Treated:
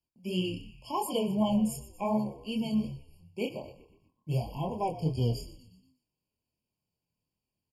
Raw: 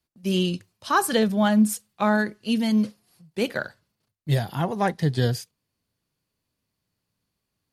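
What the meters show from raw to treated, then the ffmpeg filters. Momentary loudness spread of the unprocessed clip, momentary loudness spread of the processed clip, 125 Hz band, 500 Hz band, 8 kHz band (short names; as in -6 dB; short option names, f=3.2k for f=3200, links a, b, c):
12 LU, 16 LU, -6.5 dB, -7.5 dB, -11.0 dB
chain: -filter_complex "[0:a]flanger=delay=7.4:depth=3.8:regen=-88:speed=0.27:shape=sinusoidal,asplit=2[a][b];[b]asplit=5[c][d][e][f][g];[c]adelay=120,afreqshift=-76,volume=-15dB[h];[d]adelay=240,afreqshift=-152,volume=-21.2dB[i];[e]adelay=360,afreqshift=-228,volume=-27.4dB[j];[f]adelay=480,afreqshift=-304,volume=-33.6dB[k];[g]adelay=600,afreqshift=-380,volume=-39.8dB[l];[h][i][j][k][l]amix=inputs=5:normalize=0[m];[a][m]amix=inputs=2:normalize=0,flanger=delay=22.5:depth=4.4:speed=2.7,afftfilt=real='re*eq(mod(floor(b*sr/1024/1100),2),0)':imag='im*eq(mod(floor(b*sr/1024/1100),2),0)':win_size=1024:overlap=0.75"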